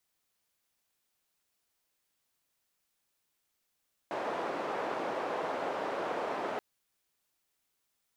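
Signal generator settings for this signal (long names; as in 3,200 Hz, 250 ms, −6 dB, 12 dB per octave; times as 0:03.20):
band-limited noise 460–670 Hz, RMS −35 dBFS 2.48 s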